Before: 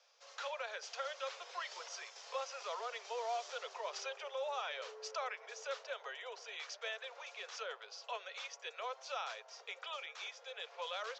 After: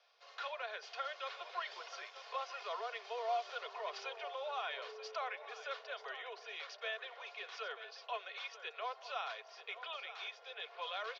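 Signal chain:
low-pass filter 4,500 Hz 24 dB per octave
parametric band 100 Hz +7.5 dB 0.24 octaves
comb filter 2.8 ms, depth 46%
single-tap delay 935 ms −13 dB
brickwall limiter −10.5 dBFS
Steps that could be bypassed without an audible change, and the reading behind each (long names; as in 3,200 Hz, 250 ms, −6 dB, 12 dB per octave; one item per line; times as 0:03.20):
parametric band 100 Hz: nothing at its input below 360 Hz
brickwall limiter −10.5 dBFS: peak of its input −26.5 dBFS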